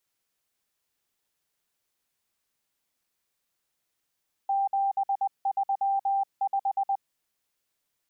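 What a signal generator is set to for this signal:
Morse code "735" 20 words per minute 788 Hz −22.5 dBFS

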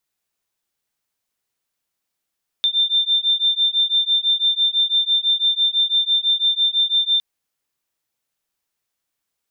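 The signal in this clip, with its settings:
two tones that beat 3,580 Hz, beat 6 Hz, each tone −18.5 dBFS 4.56 s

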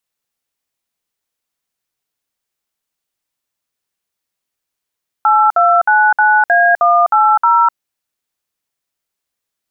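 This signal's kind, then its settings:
touch tones "8299A180", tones 253 ms, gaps 59 ms, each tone −10 dBFS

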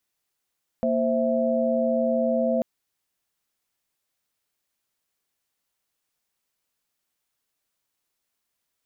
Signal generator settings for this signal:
held notes A#3/C5/E5 sine, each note −24.5 dBFS 1.79 s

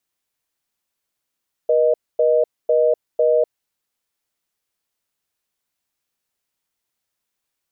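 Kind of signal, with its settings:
call progress tone reorder tone, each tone −15.5 dBFS 1.87 s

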